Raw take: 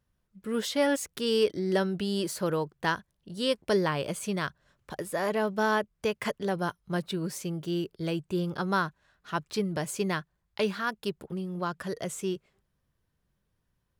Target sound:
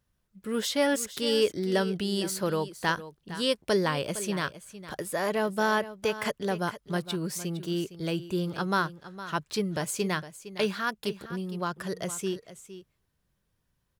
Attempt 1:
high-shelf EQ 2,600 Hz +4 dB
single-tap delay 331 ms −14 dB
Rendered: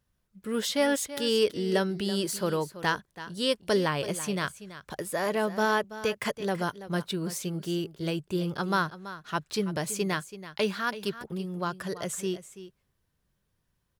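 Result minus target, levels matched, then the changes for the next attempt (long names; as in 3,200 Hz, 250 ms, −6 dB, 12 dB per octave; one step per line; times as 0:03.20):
echo 129 ms early
change: single-tap delay 460 ms −14 dB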